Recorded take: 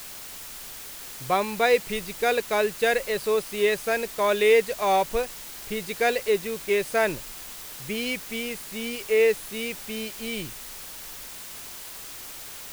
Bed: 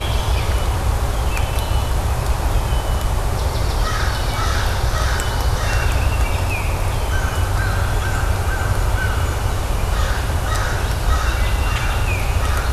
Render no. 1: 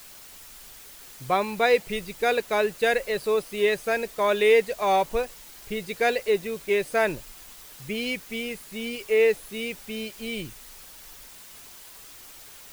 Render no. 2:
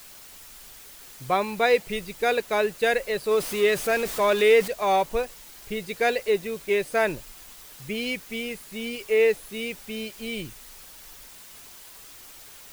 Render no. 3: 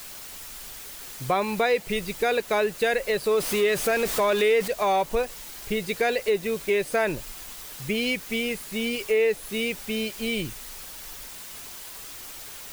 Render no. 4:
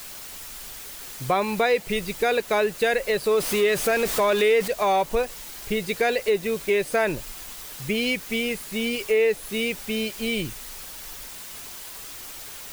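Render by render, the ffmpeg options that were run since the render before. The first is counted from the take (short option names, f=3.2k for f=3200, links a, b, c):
-af "afftdn=nr=7:nf=-40"
-filter_complex "[0:a]asettb=1/sr,asplit=3[a][b][c];[a]atrim=end=3.314[d];[b]atrim=start=3.31:end=4.68,asetpts=PTS-STARTPTS,afade=t=in:d=0.004:c=qsin,afade=t=out:st=1.366:d=0.004:c=qsin,aeval=exprs='val(0)+0.5*0.0335*sgn(val(0))':c=same[e];[c]atrim=start=4.676[f];[d][e]acrossfade=d=0.004:c1=hsin:c2=qsin[g];[g][f]acrossfade=d=0.004:c1=qsin:c2=hsin"
-filter_complex "[0:a]asplit=2[a][b];[b]alimiter=limit=-18.5dB:level=0:latency=1:release=16,volume=-0.5dB[c];[a][c]amix=inputs=2:normalize=0,acompressor=threshold=-23dB:ratio=2"
-af "volume=1.5dB"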